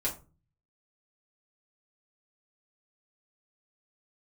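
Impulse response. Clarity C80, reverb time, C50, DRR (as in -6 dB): 17.5 dB, 0.30 s, 11.5 dB, -5.5 dB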